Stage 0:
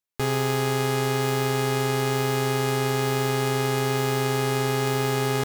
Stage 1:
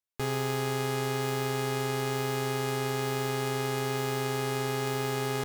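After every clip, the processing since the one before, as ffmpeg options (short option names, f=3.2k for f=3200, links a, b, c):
-af "asubboost=boost=2.5:cutoff=53,volume=-6dB"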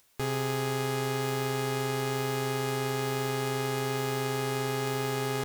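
-af "acompressor=mode=upward:threshold=-44dB:ratio=2.5"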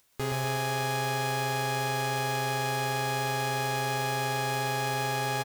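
-filter_complex "[0:a]asplit=2[a][b];[b]acrusher=bits=4:mix=0:aa=0.000001,volume=-11dB[c];[a][c]amix=inputs=2:normalize=0,aecho=1:1:124|248|372|496|620|744|868:0.631|0.334|0.177|0.0939|0.0498|0.0264|0.014,volume=-2.5dB"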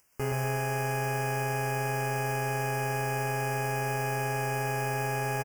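-filter_complex "[0:a]acrossover=split=2200[a][b];[a]asplit=2[c][d];[d]adelay=14,volume=-9.5dB[e];[c][e]amix=inputs=2:normalize=0[f];[b]aeval=exprs='clip(val(0),-1,0.00794)':c=same[g];[f][g]amix=inputs=2:normalize=0,asuperstop=centerf=3800:order=8:qfactor=2.1"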